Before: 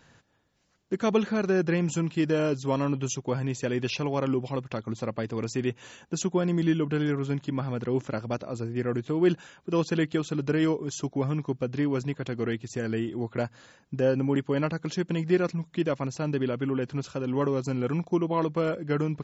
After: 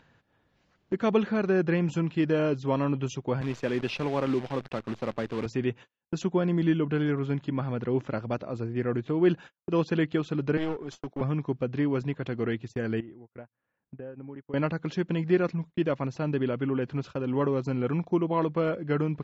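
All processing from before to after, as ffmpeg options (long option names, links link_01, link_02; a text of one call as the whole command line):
ffmpeg -i in.wav -filter_complex "[0:a]asettb=1/sr,asplit=3[link_01][link_02][link_03];[link_01]atrim=end=3.414[link_04];[link_02]atrim=start=3.41:end=5.46,asetpts=PTS-STARTPTS,afade=type=in:duration=0.004:curve=qsin,afade=type=out:start_time=2.046:duration=0.004:curve=qsin,highpass=140,acrusher=bits=7:dc=4:mix=0:aa=0.000001[link_05];[link_03]atrim=start=5.456[link_06];[link_04][link_05]acrossfade=duration=0.004:curve1=hsin:curve2=qsin[link_07];[link_07][link_06]acrossfade=duration=0.004:curve1=qsin:curve2=hsin,asettb=1/sr,asplit=3[link_08][link_09][link_10];[link_08]atrim=end=10.574[link_11];[link_09]atrim=start=10.57:end=11.21,asetpts=PTS-STARTPTS,afade=type=in:duration=0.004:curve=qsin,afade=type=out:start_time=0.636:duration=0.004:curve=qsin,highpass=frequency=94:width=0.5412,highpass=frequency=94:width=1.3066,lowshelf=frequency=230:gain=-11,aeval=exprs='clip(val(0),-1,0.0168)':channel_layout=same[link_12];[link_10]atrim=start=11.206[link_13];[link_11][link_12]acrossfade=duration=0.004:curve1=hsin:curve2=qsin[link_14];[link_14][link_13]acrossfade=duration=0.004:curve1=qsin:curve2=hsin,asettb=1/sr,asplit=3[link_15][link_16][link_17];[link_15]atrim=end=13.004[link_18];[link_16]atrim=start=13:end=14.54,asetpts=PTS-STARTPTS,afade=type=in:duration=0.004:curve=qsin,afade=type=out:start_time=1.536:duration=0.004:curve=qsin,lowpass=frequency=2500:width=0.5412,lowpass=frequency=2500:width=1.3066,acompressor=threshold=-40dB:ratio=6:attack=3.2:release=140:knee=1:detection=peak[link_19];[link_17]atrim=start=14.536[link_20];[link_18][link_19]acrossfade=duration=0.004:curve1=hsin:curve2=qsin[link_21];[link_21][link_20]acrossfade=duration=0.004:curve1=qsin:curve2=hsin,lowpass=3400,agate=range=-45dB:threshold=-40dB:ratio=16:detection=peak,acompressor=mode=upward:threshold=-32dB:ratio=2.5" out.wav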